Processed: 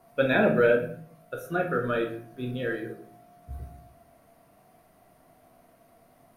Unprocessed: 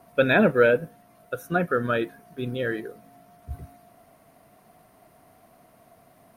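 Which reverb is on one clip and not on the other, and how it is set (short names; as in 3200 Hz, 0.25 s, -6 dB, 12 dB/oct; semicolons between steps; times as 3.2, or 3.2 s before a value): shoebox room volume 63 m³, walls mixed, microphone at 0.66 m; gain -6 dB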